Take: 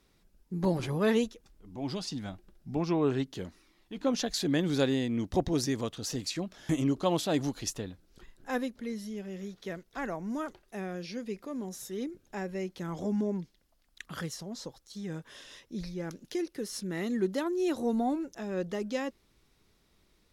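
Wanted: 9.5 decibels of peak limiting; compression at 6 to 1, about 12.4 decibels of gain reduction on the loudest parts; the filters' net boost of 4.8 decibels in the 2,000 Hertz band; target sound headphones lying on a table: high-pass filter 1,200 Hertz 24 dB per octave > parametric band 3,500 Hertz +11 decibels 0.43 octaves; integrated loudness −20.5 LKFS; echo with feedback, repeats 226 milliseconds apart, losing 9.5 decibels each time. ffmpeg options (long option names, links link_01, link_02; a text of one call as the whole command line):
ffmpeg -i in.wav -af "equalizer=frequency=2000:width_type=o:gain=5,acompressor=threshold=-36dB:ratio=6,alimiter=level_in=8dB:limit=-24dB:level=0:latency=1,volume=-8dB,highpass=frequency=1200:width=0.5412,highpass=frequency=1200:width=1.3066,equalizer=frequency=3500:width_type=o:width=0.43:gain=11,aecho=1:1:226|452|678|904:0.335|0.111|0.0365|0.012,volume=24dB" out.wav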